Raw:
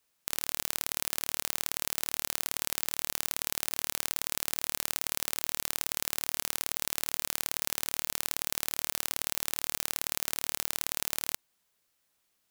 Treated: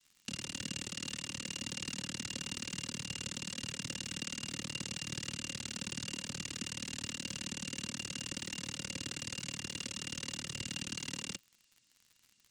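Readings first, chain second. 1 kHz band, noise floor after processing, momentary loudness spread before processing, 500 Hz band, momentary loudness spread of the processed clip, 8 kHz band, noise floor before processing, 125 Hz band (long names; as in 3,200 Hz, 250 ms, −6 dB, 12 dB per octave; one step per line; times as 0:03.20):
−12.0 dB, −71 dBFS, 0 LU, −7.0 dB, 1 LU, −7.0 dB, −76 dBFS, +6.0 dB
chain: cochlear-implant simulation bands 6
low shelf with overshoot 390 Hz +12 dB, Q 1.5
hollow resonant body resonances 540/2,800 Hz, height 15 dB, ringing for 45 ms
surface crackle 87 per second −43 dBFS
parametric band 570 Hz −12 dB 1.9 octaves
level −3.5 dB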